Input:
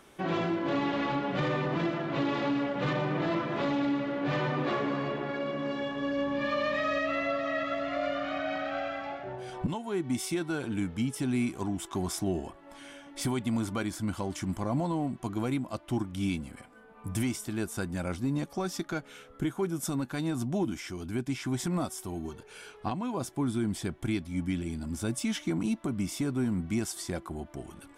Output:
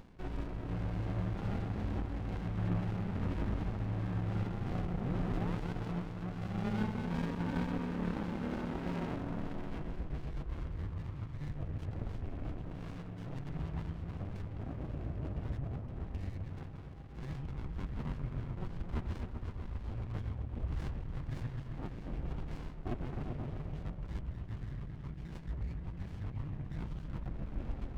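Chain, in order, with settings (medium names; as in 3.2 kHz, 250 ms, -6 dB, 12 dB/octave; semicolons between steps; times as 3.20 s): reverse; compression 12:1, threshold -39 dBFS, peak gain reduction 14.5 dB; reverse; random-step tremolo; painted sound rise, 4.90–5.73 s, 490–2000 Hz -47 dBFS; mistuned SSB -390 Hz 300–3200 Hz; on a send: delay with an opening low-pass 130 ms, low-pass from 200 Hz, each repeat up 1 oct, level 0 dB; on the sum: sliding maximum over 65 samples; trim +9 dB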